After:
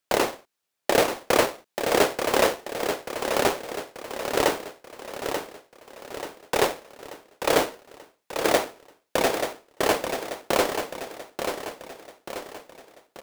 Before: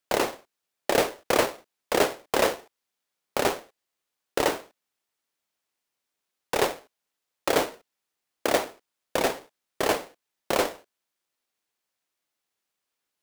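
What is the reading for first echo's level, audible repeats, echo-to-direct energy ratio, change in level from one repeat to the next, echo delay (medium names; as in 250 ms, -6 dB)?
-7.0 dB, 5, -6.0 dB, -6.0 dB, 885 ms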